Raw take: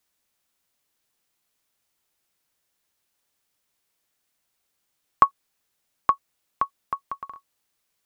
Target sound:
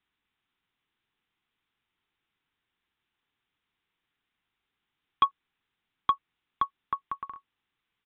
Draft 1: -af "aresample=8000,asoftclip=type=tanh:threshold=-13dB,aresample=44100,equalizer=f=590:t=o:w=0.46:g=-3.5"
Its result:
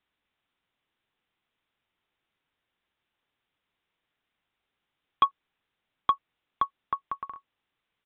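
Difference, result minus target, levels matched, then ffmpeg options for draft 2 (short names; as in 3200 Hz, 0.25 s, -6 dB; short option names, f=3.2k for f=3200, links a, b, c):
500 Hz band +4.0 dB
-af "aresample=8000,asoftclip=type=tanh:threshold=-13dB,aresample=44100,equalizer=f=590:t=o:w=0.46:g=-14.5"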